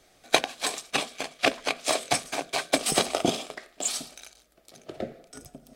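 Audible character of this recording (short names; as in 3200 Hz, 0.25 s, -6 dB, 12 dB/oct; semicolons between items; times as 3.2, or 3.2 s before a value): noise floor -61 dBFS; spectral tilt -1.5 dB/oct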